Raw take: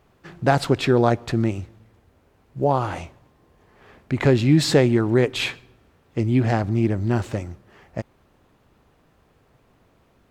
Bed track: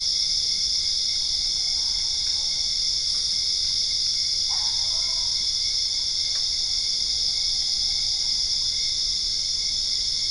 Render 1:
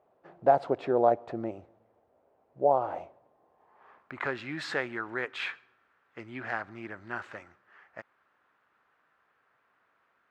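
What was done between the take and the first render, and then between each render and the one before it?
band-pass sweep 640 Hz -> 1.5 kHz, 3.29–4.39 s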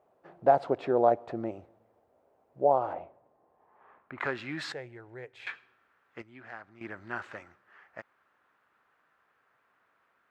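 2.93–4.18 s: distance through air 320 m; 4.72–5.47 s: FFT filter 130 Hz 0 dB, 200 Hz -17 dB, 470 Hz -6 dB, 830 Hz -11 dB, 1.2 kHz -24 dB, 2.1 kHz -13 dB, 3 kHz -16 dB, 9.9 kHz -9 dB; 6.22–6.81 s: gain -11 dB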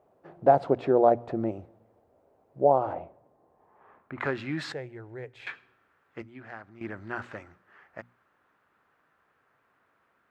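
bass shelf 400 Hz +9 dB; hum notches 60/120/180/240 Hz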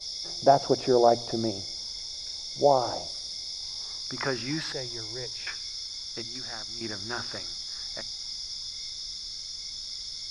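add bed track -13 dB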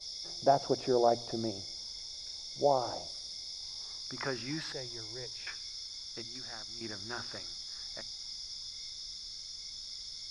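trim -6.5 dB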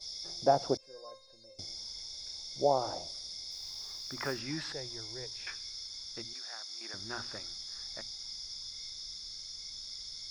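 0.77–1.59 s: feedback comb 530 Hz, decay 0.28 s, mix 100%; 3.51–4.41 s: block-companded coder 5-bit; 6.33–6.94 s: high-pass 600 Hz

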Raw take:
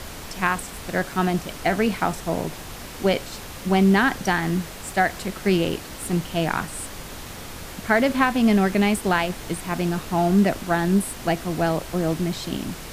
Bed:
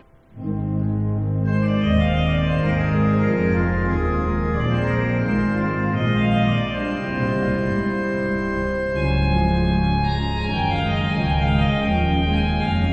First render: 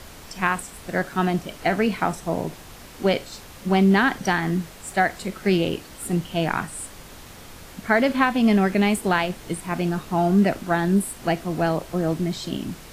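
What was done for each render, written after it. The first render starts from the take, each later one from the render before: noise print and reduce 6 dB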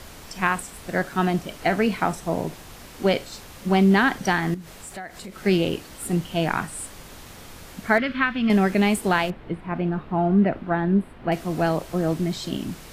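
4.54–5.38 s: compression 4:1, threshold -35 dBFS; 7.98–8.50 s: FFT filter 130 Hz 0 dB, 880 Hz -14 dB, 1.3 kHz +2 dB, 3.3 kHz -1 dB, 5.3 kHz -11 dB, 7.5 kHz -23 dB; 9.30–11.32 s: distance through air 480 m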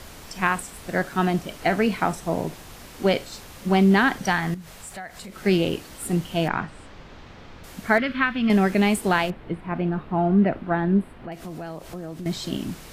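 4.25–5.30 s: peaking EQ 330 Hz -6.5 dB; 6.48–7.64 s: distance through air 200 m; 11.11–12.26 s: compression 4:1, threshold -33 dBFS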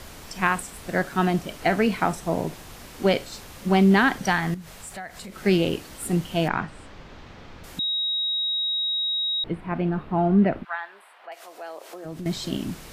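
7.79–9.44 s: bleep 3.8 kHz -22.5 dBFS; 10.63–12.04 s: high-pass 1.1 kHz -> 330 Hz 24 dB/octave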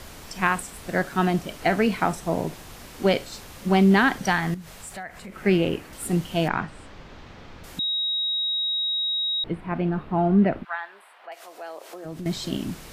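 5.03–5.93 s: resonant high shelf 3 kHz -6 dB, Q 1.5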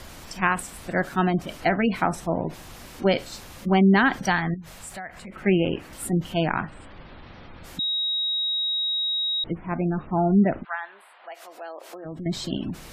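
spectral gate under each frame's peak -30 dB strong; band-stop 430 Hz, Q 12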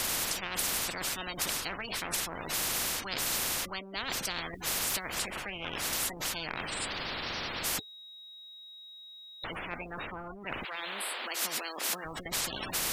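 reverse; compression 12:1, threshold -29 dBFS, peak gain reduction 16 dB; reverse; spectrum-flattening compressor 10:1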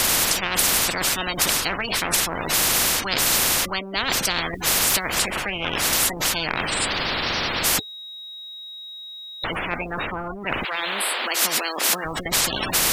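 trim +12 dB

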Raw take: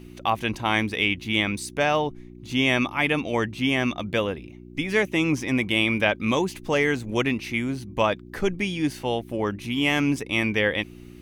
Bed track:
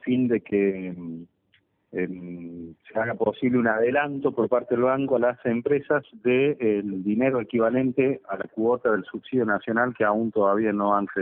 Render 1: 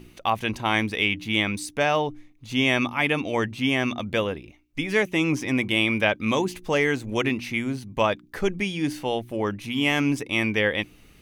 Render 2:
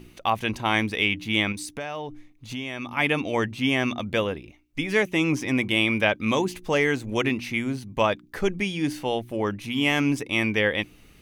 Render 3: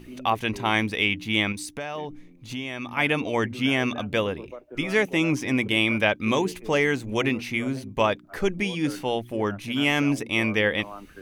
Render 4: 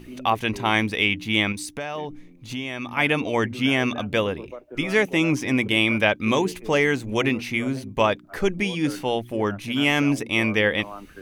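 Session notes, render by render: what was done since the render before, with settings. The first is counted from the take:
de-hum 60 Hz, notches 6
1.52–2.97 s: compression 4:1, threshold -30 dBFS
add bed track -18.5 dB
trim +2 dB

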